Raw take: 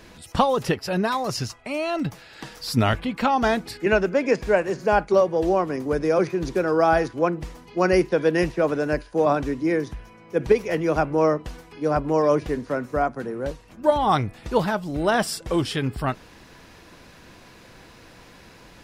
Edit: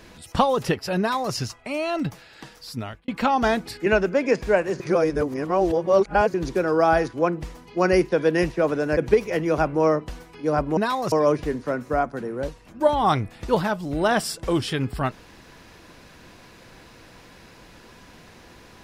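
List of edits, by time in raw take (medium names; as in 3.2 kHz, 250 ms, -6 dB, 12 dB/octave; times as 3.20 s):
0.99–1.34 s: copy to 12.15 s
2.05–3.08 s: fade out
4.80–6.34 s: reverse
8.97–10.35 s: delete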